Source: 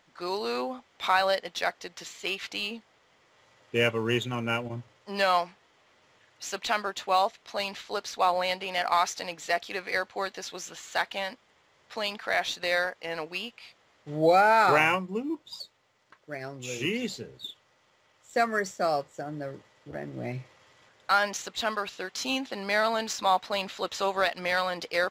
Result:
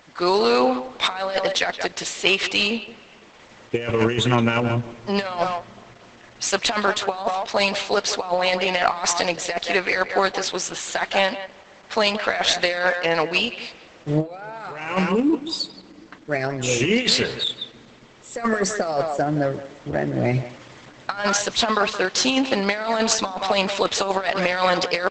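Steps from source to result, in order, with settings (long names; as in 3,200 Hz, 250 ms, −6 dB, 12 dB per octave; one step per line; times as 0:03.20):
in parallel at −7.5 dB: asymmetric clip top −29 dBFS, bottom −15 dBFS
0:16.98–0:17.48: on the sum: parametric band 2,000 Hz +14.5 dB 2.6 octaves
far-end echo of a speakerphone 170 ms, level −13 dB
compressor whose output falls as the input rises −27 dBFS, ratio −0.5
on a send at −22 dB: convolution reverb RT60 4.8 s, pre-delay 7 ms
on the sum: level +8.5 dB
Opus 12 kbit/s 48,000 Hz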